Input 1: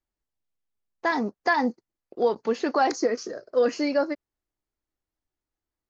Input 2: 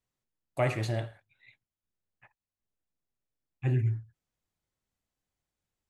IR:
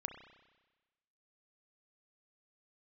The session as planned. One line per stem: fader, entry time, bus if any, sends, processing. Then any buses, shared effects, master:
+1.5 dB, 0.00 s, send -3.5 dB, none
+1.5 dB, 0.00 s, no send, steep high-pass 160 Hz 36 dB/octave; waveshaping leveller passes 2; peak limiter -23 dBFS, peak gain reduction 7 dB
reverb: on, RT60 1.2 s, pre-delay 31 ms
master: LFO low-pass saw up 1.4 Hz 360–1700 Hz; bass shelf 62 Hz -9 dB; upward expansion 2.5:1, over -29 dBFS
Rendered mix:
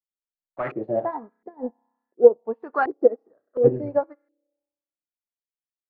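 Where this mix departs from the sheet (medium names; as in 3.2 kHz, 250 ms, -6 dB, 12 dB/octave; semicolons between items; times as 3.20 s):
stem 2 +1.5 dB -> +12.0 dB; master: missing bass shelf 62 Hz -9 dB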